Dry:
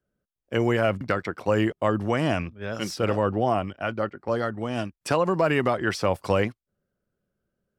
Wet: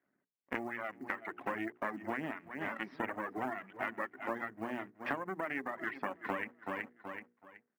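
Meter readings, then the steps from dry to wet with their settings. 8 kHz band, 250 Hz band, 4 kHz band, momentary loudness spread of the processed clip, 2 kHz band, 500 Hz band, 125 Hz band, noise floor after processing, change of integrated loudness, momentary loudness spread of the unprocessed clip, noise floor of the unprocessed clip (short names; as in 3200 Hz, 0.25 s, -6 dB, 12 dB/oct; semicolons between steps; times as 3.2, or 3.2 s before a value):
under -20 dB, -14.5 dB, -19.5 dB, 4 LU, -7.5 dB, -18.0 dB, -25.0 dB, -84 dBFS, -14.0 dB, 8 LU, under -85 dBFS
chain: half-wave rectifier; speaker cabinet 230–2400 Hz, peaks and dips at 270 Hz +7 dB, 490 Hz -8 dB, 1900 Hz +8 dB; feedback echo 0.376 s, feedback 28%, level -13.5 dB; compressor 6:1, threshold -42 dBFS, peak gain reduction 20.5 dB; short-mantissa float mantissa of 4-bit; reverb removal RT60 1.3 s; notches 60/120/180/240/300/360/420/480 Hz; vocal rider within 3 dB 2 s; gain +8 dB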